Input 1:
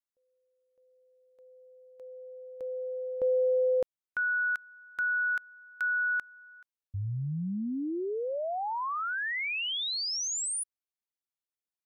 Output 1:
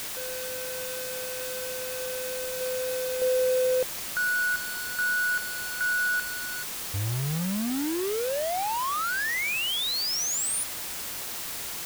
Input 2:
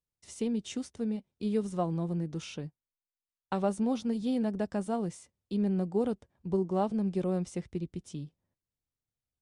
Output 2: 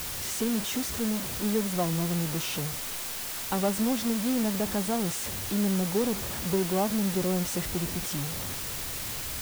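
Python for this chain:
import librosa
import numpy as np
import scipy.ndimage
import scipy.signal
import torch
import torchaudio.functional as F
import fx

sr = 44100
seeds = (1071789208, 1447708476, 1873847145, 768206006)

y = x + 0.5 * 10.0 ** (-31.5 / 20.0) * np.sign(x)
y = fx.quant_dither(y, sr, seeds[0], bits=6, dither='triangular')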